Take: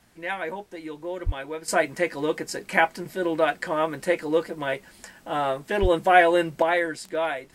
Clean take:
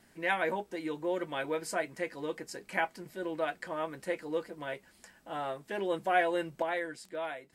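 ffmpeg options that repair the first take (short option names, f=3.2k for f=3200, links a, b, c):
-filter_complex "[0:a]asplit=3[a][b][c];[a]afade=t=out:st=1.25:d=0.02[d];[b]highpass=f=140:w=0.5412,highpass=f=140:w=1.3066,afade=t=in:st=1.25:d=0.02,afade=t=out:st=1.37:d=0.02[e];[c]afade=t=in:st=1.37:d=0.02[f];[d][e][f]amix=inputs=3:normalize=0,asplit=3[g][h][i];[g]afade=t=out:st=5.81:d=0.02[j];[h]highpass=f=140:w=0.5412,highpass=f=140:w=1.3066,afade=t=in:st=5.81:d=0.02,afade=t=out:st=5.93:d=0.02[k];[i]afade=t=in:st=5.93:d=0.02[l];[j][k][l]amix=inputs=3:normalize=0,agate=range=-21dB:threshold=-43dB,asetnsamples=n=441:p=0,asendcmd='1.68 volume volume -11dB',volume=0dB"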